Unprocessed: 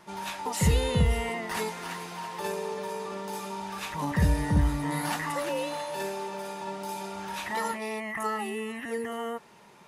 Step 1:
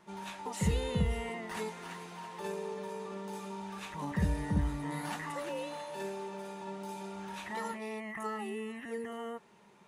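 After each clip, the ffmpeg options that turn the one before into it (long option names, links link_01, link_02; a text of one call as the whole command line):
ffmpeg -i in.wav -af "equalizer=frequency=200:width_type=o:width=0.33:gain=6,equalizer=frequency=400:width_type=o:width=0.33:gain=4,equalizer=frequency=5000:width_type=o:width=0.33:gain=-4,equalizer=frequency=12500:width_type=o:width=0.33:gain=-9,volume=-8dB" out.wav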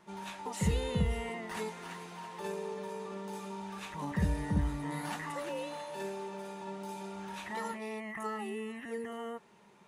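ffmpeg -i in.wav -af anull out.wav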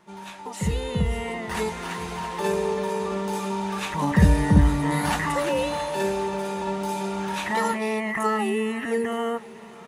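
ffmpeg -i in.wav -af "aecho=1:1:510|1020|1530|2040|2550:0.0891|0.0526|0.031|0.0183|0.0108,dynaudnorm=framelen=280:gausssize=11:maxgain=10.5dB,volume=3.5dB" out.wav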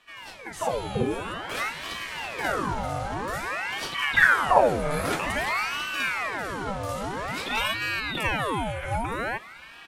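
ffmpeg -i in.wav -af "aeval=exprs='val(0)*sin(2*PI*1200*n/s+1200*0.75/0.51*sin(2*PI*0.51*n/s))':channel_layout=same" out.wav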